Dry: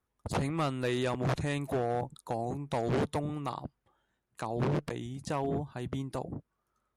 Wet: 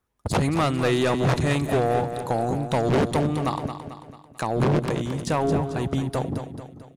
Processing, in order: waveshaping leveller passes 1; feedback delay 221 ms, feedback 48%, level -9 dB; trim +7 dB

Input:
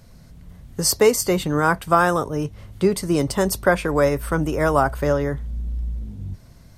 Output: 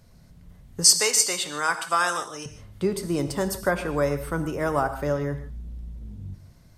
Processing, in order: 0.84–2.46 s: frequency weighting ITU-R 468; gated-style reverb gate 180 ms flat, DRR 9 dB; trim -6.5 dB

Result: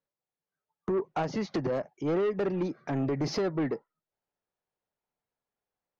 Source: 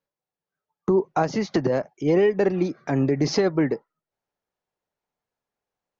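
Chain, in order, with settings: distance through air 78 m; saturation -19.5 dBFS, distortion -12 dB; trim -4 dB

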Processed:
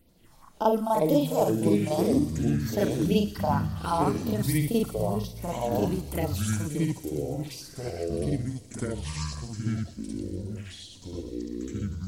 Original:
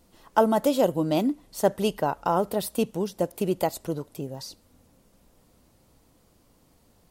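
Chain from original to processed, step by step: phase shifter stages 4, 3.3 Hz, lowest notch 340–1900 Hz; granular stretch 1.7×, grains 167 ms; ever faster or slower copies 89 ms, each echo -6 st, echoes 3; feedback echo behind a high-pass 121 ms, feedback 75%, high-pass 4.2 kHz, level -9 dB; on a send at -20.5 dB: reverberation RT60 1.9 s, pre-delay 6 ms

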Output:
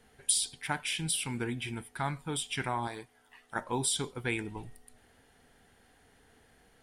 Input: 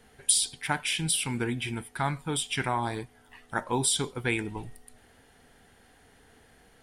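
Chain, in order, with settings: 2.87–3.56 s: bass shelf 250 Hz -11.5 dB; trim -4.5 dB

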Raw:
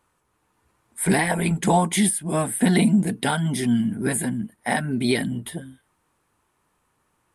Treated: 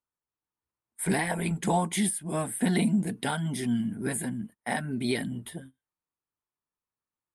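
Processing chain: gate -37 dBFS, range -21 dB; trim -7 dB

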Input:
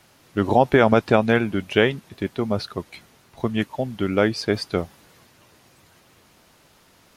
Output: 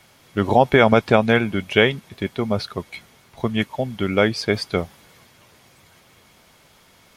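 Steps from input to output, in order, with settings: peaking EQ 310 Hz -4 dB 0.44 oct; small resonant body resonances 2.2/3.3 kHz, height 10 dB; trim +2 dB

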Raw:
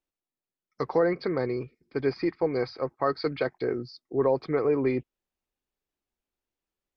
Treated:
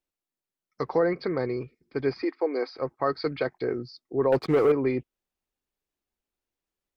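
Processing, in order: 2.22–2.76 s: elliptic high-pass 260 Hz, stop band 40 dB; 4.32–4.72 s: waveshaping leveller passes 2

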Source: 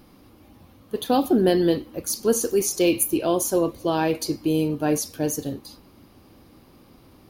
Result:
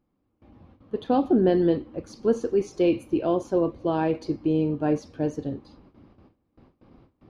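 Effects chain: gate with hold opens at -41 dBFS; tape spacing loss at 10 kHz 34 dB

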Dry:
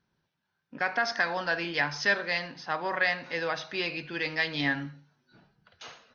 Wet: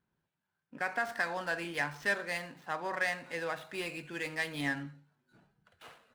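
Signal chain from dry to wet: median filter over 9 samples; trim -5 dB

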